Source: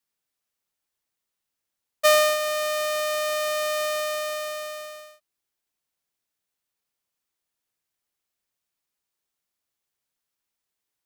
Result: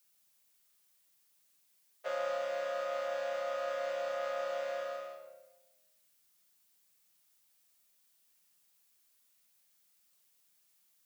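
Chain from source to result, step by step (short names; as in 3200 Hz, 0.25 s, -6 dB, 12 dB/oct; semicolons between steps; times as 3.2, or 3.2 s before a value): chord vocoder major triad, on C#3; low shelf 190 Hz -7 dB; reverse; compressor 12:1, threshold -34 dBFS, peak gain reduction 19 dB; reverse; added noise blue -72 dBFS; shoebox room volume 630 m³, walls mixed, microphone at 1 m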